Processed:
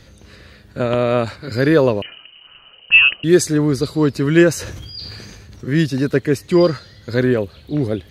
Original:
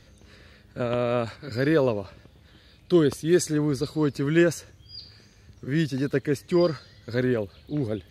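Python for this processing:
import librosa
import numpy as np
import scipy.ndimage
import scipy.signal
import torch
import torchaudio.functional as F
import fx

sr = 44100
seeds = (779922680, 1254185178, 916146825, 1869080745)

y = fx.freq_invert(x, sr, carrier_hz=3000, at=(2.02, 3.24))
y = fx.sustainer(y, sr, db_per_s=24.0, at=(4.52, 5.74))
y = y * librosa.db_to_amplitude(8.0)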